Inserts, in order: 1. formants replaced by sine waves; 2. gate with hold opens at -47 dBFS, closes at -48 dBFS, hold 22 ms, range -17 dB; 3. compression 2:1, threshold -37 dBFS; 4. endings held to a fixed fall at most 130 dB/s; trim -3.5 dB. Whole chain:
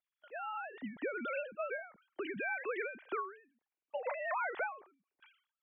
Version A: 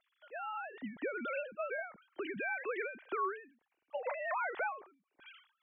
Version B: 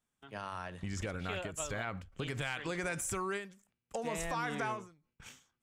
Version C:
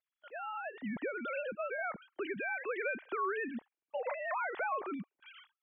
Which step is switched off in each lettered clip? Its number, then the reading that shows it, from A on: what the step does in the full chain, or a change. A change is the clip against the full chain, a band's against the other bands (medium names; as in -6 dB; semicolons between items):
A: 2, momentary loudness spread change +3 LU; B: 1, 125 Hz band +21.0 dB; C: 4, crest factor change -2.5 dB